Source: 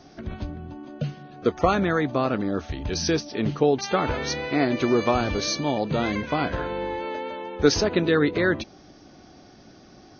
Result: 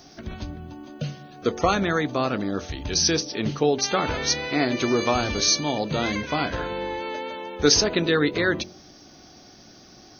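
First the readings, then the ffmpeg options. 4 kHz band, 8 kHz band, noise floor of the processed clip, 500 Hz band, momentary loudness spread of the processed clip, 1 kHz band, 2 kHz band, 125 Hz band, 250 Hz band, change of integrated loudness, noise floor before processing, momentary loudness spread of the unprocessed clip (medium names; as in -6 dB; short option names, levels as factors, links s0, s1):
+6.5 dB, no reading, -49 dBFS, -1.0 dB, 14 LU, 0.0 dB, +1.5 dB, -1.5 dB, -1.0 dB, +1.0 dB, -50 dBFS, 12 LU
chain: -af "aemphasis=mode=production:type=75fm,bandreject=f=45.38:t=h:w=4,bandreject=f=90.76:t=h:w=4,bandreject=f=136.14:t=h:w=4,bandreject=f=181.52:t=h:w=4,bandreject=f=226.9:t=h:w=4,bandreject=f=272.28:t=h:w=4,bandreject=f=317.66:t=h:w=4,bandreject=f=363.04:t=h:w=4,bandreject=f=408.42:t=h:w=4,bandreject=f=453.8:t=h:w=4,bandreject=f=499.18:t=h:w=4,bandreject=f=544.56:t=h:w=4,bandreject=f=589.94:t=h:w=4,bandreject=f=635.32:t=h:w=4"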